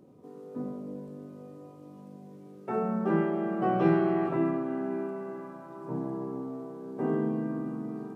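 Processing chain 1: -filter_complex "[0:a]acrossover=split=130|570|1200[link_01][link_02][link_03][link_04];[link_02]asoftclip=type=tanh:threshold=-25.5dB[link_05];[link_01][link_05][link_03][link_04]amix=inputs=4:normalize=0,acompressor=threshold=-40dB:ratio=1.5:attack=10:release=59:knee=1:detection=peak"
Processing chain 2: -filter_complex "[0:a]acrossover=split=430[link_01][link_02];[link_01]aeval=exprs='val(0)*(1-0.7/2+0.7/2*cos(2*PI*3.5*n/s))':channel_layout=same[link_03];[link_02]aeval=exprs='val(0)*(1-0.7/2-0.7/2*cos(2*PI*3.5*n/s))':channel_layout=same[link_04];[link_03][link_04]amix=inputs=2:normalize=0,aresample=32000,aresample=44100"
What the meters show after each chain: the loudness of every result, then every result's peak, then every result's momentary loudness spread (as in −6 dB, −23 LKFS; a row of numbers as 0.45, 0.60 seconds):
−37.0, −34.5 LKFS; −22.5, −16.0 dBFS; 15, 21 LU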